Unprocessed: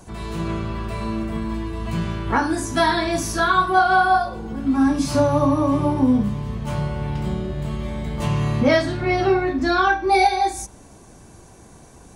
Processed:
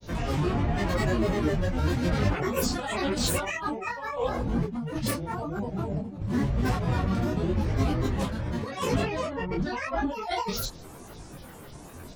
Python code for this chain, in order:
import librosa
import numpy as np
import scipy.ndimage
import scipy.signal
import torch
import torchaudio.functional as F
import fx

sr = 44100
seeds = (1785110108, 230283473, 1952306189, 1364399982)

y = fx.granulator(x, sr, seeds[0], grain_ms=100.0, per_s=20.0, spray_ms=17.0, spread_st=12)
y = fx.over_compress(y, sr, threshold_db=-27.0, ratio=-1.0)
y = fx.detune_double(y, sr, cents=31)
y = y * 10.0 ** (2.0 / 20.0)